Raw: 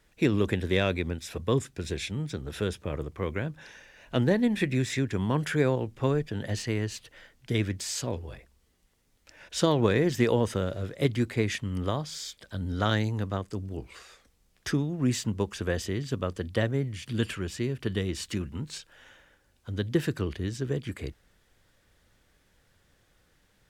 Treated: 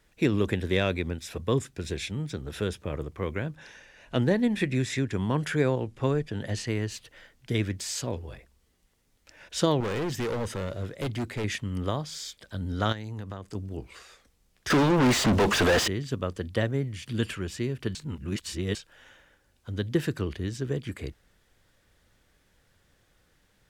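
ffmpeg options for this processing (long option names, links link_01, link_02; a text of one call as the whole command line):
ffmpeg -i in.wav -filter_complex "[0:a]asettb=1/sr,asplit=3[link_01][link_02][link_03];[link_01]atrim=end=3.554[link_04];[link_02]atrim=start=3.55:end=6.7,asetpts=PTS-STARTPTS,afade=type=in:duration=0.004:curve=qsin,afade=type=out:start_time=3.146:duration=0.004:curve=qsin,lowpass=frequency=12000:width=0.5412,lowpass=frequency=12000:width=1.3066[link_05];[link_03]atrim=start=6.696[link_06];[link_04][link_05]acrossfade=duration=0.004:curve1=hsin:curve2=qsin[link_07];[link_07][link_06]acrossfade=duration=0.004:curve1=qsin:curve2=hsin,asettb=1/sr,asplit=3[link_08][link_09][link_10];[link_08]atrim=end=9.804[link_11];[link_09]atrim=start=9.8:end=11.44,asetpts=PTS-STARTPTS,afade=type=in:duration=0.004:curve=qsin,afade=type=out:start_time=1.636:duration=0.004:curve=qsin,asoftclip=type=hard:threshold=-27dB[link_12];[link_10]atrim=start=11.436[link_13];[link_11][link_12]acrossfade=duration=0.004:curve1=hsin:curve2=qsin[link_14];[link_14][link_13]acrossfade=duration=0.004:curve1=qsin:curve2=hsin,asettb=1/sr,asplit=3[link_15][link_16][link_17];[link_15]atrim=end=12.924[link_18];[link_16]atrim=start=12.92:end=13.55,asetpts=PTS-STARTPTS,afade=type=in:duration=0.004:curve=qsin,afade=type=out:start_time=0.626:duration=0.004:curve=qsin,acompressor=threshold=-32dB:ratio=8:attack=3.2:release=140:knee=1:detection=peak[link_19];[link_17]atrim=start=13.546[link_20];[link_18][link_19]acrossfade=duration=0.004:curve1=hsin:curve2=qsin[link_21];[link_21][link_20]acrossfade=duration=0.004:curve1=qsin:curve2=hsin,asettb=1/sr,asplit=3[link_22][link_23][link_24];[link_22]atrim=end=14.704[link_25];[link_23]atrim=start=14.7:end=15.88,asetpts=PTS-STARTPTS,afade=type=in:duration=0.004:curve=qsin,afade=type=out:start_time=1.176:duration=0.004:curve=qsin,asplit=2[link_26][link_27];[link_27]highpass=frequency=720:poles=1,volume=41dB,asoftclip=type=tanh:threshold=-14dB[link_28];[link_26][link_28]amix=inputs=2:normalize=0,lowpass=frequency=2600:poles=1,volume=-6dB[link_29];[link_24]atrim=start=15.876[link_30];[link_25][link_29]acrossfade=duration=0.004:curve1=hsin:curve2=qsin[link_31];[link_31][link_30]acrossfade=duration=0.004:curve1=qsin:curve2=hsin,asplit=3[link_32][link_33][link_34];[link_32]atrim=end=17.952[link_35];[link_33]atrim=start=17.948:end=18.752,asetpts=PTS-STARTPTS,areverse[link_36];[link_34]atrim=start=18.748[link_37];[link_35][link_36]acrossfade=duration=0.004:curve1=hsin:curve2=hsin[link_38];[link_38][link_37]acrossfade=duration=0.004:curve1=hsin:curve2=hsin" out.wav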